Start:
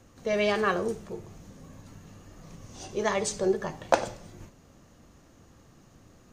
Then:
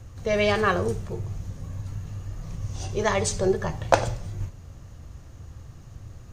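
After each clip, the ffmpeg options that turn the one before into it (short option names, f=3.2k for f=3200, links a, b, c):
-af "lowshelf=f=150:t=q:w=1.5:g=12,volume=4dB"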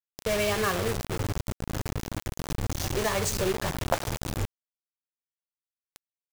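-af "acompressor=threshold=-26dB:ratio=2.5,acrusher=bits=4:mix=0:aa=0.000001"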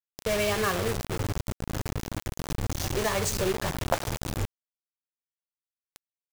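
-af anull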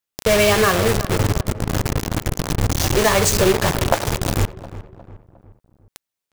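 -filter_complex "[0:a]asplit=2[a][b];[b]alimiter=limit=-17.5dB:level=0:latency=1:release=340,volume=0.5dB[c];[a][c]amix=inputs=2:normalize=0,asplit=2[d][e];[e]adelay=357,lowpass=f=1.5k:p=1,volume=-14.5dB,asplit=2[f][g];[g]adelay=357,lowpass=f=1.5k:p=1,volume=0.48,asplit=2[h][i];[i]adelay=357,lowpass=f=1.5k:p=1,volume=0.48,asplit=2[j][k];[k]adelay=357,lowpass=f=1.5k:p=1,volume=0.48[l];[d][f][h][j][l]amix=inputs=5:normalize=0,volume=5dB"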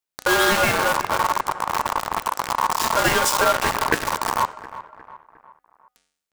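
-af "bandreject=f=238.6:t=h:w=4,bandreject=f=477.2:t=h:w=4,bandreject=f=715.8:t=h:w=4,bandreject=f=954.4:t=h:w=4,bandreject=f=1.193k:t=h:w=4,bandreject=f=1.4316k:t=h:w=4,bandreject=f=1.6702k:t=h:w=4,bandreject=f=1.9088k:t=h:w=4,bandreject=f=2.1474k:t=h:w=4,bandreject=f=2.386k:t=h:w=4,bandreject=f=2.6246k:t=h:w=4,bandreject=f=2.8632k:t=h:w=4,bandreject=f=3.1018k:t=h:w=4,bandreject=f=3.3404k:t=h:w=4,bandreject=f=3.579k:t=h:w=4,bandreject=f=3.8176k:t=h:w=4,bandreject=f=4.0562k:t=h:w=4,bandreject=f=4.2948k:t=h:w=4,bandreject=f=4.5334k:t=h:w=4,bandreject=f=4.772k:t=h:w=4,bandreject=f=5.0106k:t=h:w=4,bandreject=f=5.2492k:t=h:w=4,bandreject=f=5.4878k:t=h:w=4,bandreject=f=5.7264k:t=h:w=4,bandreject=f=5.965k:t=h:w=4,bandreject=f=6.2036k:t=h:w=4,bandreject=f=6.4422k:t=h:w=4,bandreject=f=6.6808k:t=h:w=4,bandreject=f=6.9194k:t=h:w=4,bandreject=f=7.158k:t=h:w=4,bandreject=f=7.3966k:t=h:w=4,bandreject=f=7.6352k:t=h:w=4,bandreject=f=7.8738k:t=h:w=4,bandreject=f=8.1124k:t=h:w=4,bandreject=f=8.351k:t=h:w=4,bandreject=f=8.5896k:t=h:w=4,bandreject=f=8.8282k:t=h:w=4,bandreject=f=9.0668k:t=h:w=4,aeval=exprs='val(0)*sin(2*PI*1000*n/s)':c=same"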